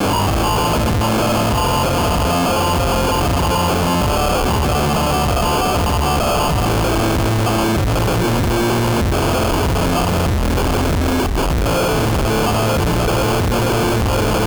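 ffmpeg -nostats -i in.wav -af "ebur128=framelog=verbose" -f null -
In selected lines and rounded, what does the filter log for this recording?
Integrated loudness:
  I:         -16.5 LUFS
  Threshold: -26.5 LUFS
Loudness range:
  LRA:         0.8 LU
  Threshold: -36.6 LUFS
  LRA low:   -17.0 LUFS
  LRA high:  -16.2 LUFS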